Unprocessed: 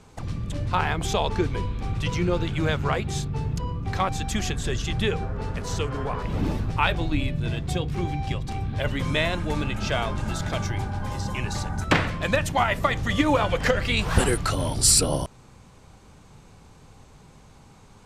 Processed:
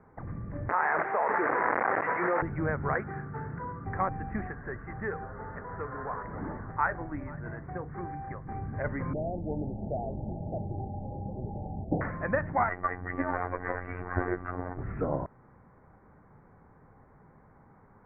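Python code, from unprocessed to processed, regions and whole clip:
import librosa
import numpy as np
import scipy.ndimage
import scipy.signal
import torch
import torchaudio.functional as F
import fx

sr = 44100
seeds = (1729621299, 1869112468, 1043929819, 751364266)

y = fx.chain(x, sr, fx.delta_mod(bps=64000, step_db=-21.0),
    fx.highpass(hz=570.0, slope=12),
    fx.env_flatten(amount_pct=100), at=(0.69, 2.42))
y = fx.chain(y, sr, fx.highpass(hz=150.0, slope=6),
    fx.peak_eq(hz=1500.0, db=12.0, octaves=0.74), at=(2.95, 3.85))
y = fx.chain(y, sr, fx.lowpass(hz=1800.0, slope=24),
    fx.tilt_shelf(db=-6.5, hz=920.0),
    fx.echo_single(ms=484, db=-21.5), at=(4.47, 8.46))
y = fx.chain(y, sr, fx.delta_mod(bps=32000, step_db=-37.5),
    fx.steep_lowpass(hz=820.0, slope=96), at=(9.13, 12.01))
y = fx.chain(y, sr, fx.lower_of_two(delay_ms=2.6),
    fx.robotise(hz=89.9), at=(12.69, 14.78))
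y = scipy.signal.sosfilt(scipy.signal.butter(12, 2000.0, 'lowpass', fs=sr, output='sos'), y)
y = fx.low_shelf(y, sr, hz=97.0, db=-9.0)
y = F.gain(torch.from_numpy(y), -4.0).numpy()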